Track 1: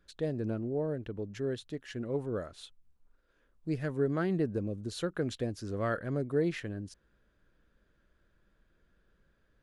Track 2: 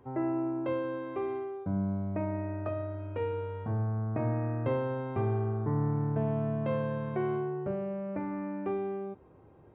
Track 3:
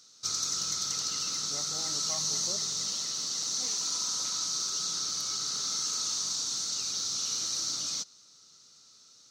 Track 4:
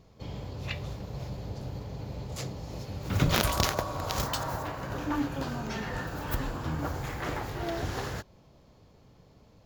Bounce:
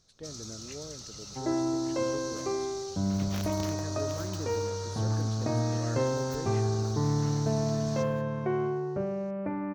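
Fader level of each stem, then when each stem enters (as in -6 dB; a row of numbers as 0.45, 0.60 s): -10.5, +2.0, -13.0, -15.0 dB; 0.00, 1.30, 0.00, 0.00 s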